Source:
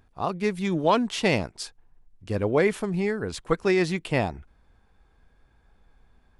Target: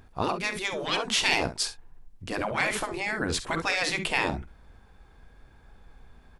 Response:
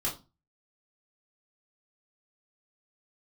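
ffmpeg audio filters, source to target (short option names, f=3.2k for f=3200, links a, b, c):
-af "acontrast=80,aecho=1:1:48|67:0.188|0.188,afftfilt=real='re*lt(hypot(re,im),0.355)':imag='im*lt(hypot(re,im),0.355)':win_size=1024:overlap=0.75"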